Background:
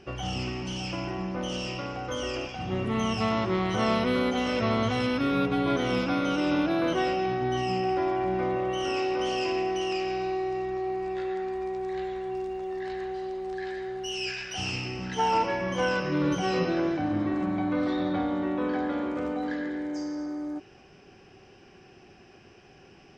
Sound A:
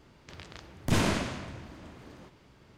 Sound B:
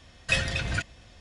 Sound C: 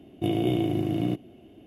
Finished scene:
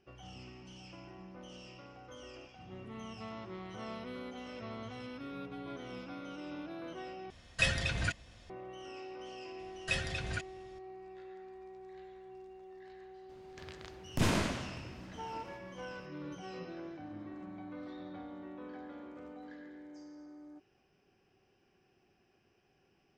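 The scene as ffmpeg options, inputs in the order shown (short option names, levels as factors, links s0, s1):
-filter_complex "[2:a]asplit=2[s0][s1];[0:a]volume=0.119,asplit=2[s2][s3];[s2]atrim=end=7.304[s4];[s0]atrim=end=1.2,asetpts=PTS-STARTPTS,volume=0.596[s5];[s3]atrim=start=8.496[s6];[s1]atrim=end=1.2,asetpts=PTS-STARTPTS,volume=0.355,afade=t=in:d=0.004:c=hsin,afade=t=out:st=1.196:d=0.004:c=hsin,adelay=9590[s7];[1:a]atrim=end=2.77,asetpts=PTS-STARTPTS,volume=0.631,afade=t=in:d=0.004:c=hsin,afade=t=out:st=2.766:d=0.004:c=hsin,adelay=13290[s8];[s4][s5]acrossfade=d=0.004:c1=hsin:c2=hsin[s9];[s9][s6]acrossfade=d=0.004:c1=hsin:c2=hsin[s10];[s10][s7][s8]amix=inputs=3:normalize=0"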